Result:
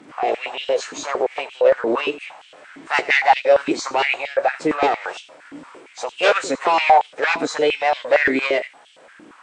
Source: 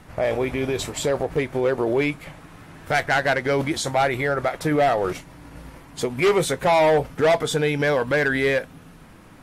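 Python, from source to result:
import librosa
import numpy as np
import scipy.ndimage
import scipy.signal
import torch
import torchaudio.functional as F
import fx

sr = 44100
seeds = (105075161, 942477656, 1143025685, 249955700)

p1 = fx.freq_compress(x, sr, knee_hz=3000.0, ratio=1.5)
p2 = p1 + fx.echo_single(p1, sr, ms=84, db=-17.0, dry=0)
p3 = fx.formant_shift(p2, sr, semitones=3)
p4 = fx.filter_held_highpass(p3, sr, hz=8.7, low_hz=280.0, high_hz=3100.0)
y = p4 * 10.0 ** (-1.0 / 20.0)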